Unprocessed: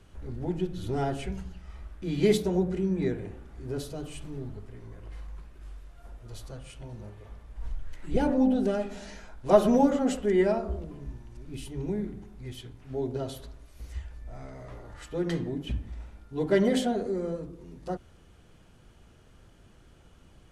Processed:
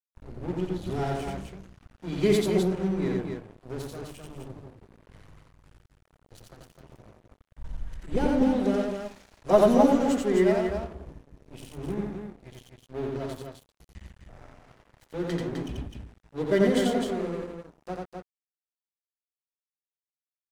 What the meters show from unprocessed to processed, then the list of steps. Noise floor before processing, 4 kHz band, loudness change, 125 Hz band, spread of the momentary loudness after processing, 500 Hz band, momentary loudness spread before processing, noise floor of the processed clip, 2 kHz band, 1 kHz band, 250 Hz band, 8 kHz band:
−56 dBFS, +1.5 dB, +2.0 dB, 0.0 dB, 21 LU, +2.0 dB, 21 LU, below −85 dBFS, +2.5 dB, +2.0 dB, +1.5 dB, +1.0 dB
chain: mains-hum notches 60/120 Hz
dead-zone distortion −39.5 dBFS
loudspeakers that aren't time-aligned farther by 30 metres −2 dB, 88 metres −5 dB

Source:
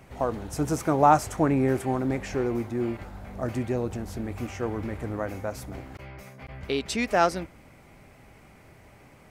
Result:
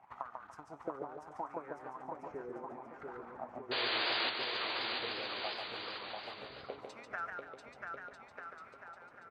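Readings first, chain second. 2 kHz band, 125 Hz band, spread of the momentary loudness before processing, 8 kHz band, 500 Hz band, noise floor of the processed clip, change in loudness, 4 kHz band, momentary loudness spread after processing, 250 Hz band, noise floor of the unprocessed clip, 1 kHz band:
−3.5 dB, −28.5 dB, 19 LU, below −25 dB, −15.5 dB, −58 dBFS, −12.5 dB, +4.5 dB, 17 LU, −22.0 dB, −53 dBFS, −14.5 dB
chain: parametric band 470 Hz −10.5 dB 1.1 octaves
downward compressor 6 to 1, threshold −40 dBFS, peak gain reduction 21.5 dB
transient designer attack +11 dB, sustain −10 dB
LFO wah 0.73 Hz 450–1,400 Hz, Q 5.6
sound drawn into the spectrogram noise, 0:03.71–0:04.30, 310–4,800 Hz −41 dBFS
bouncing-ball delay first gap 690 ms, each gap 0.8×, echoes 5
feedback echo with a swinging delay time 144 ms, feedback 37%, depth 101 cents, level −5 dB
level +6 dB

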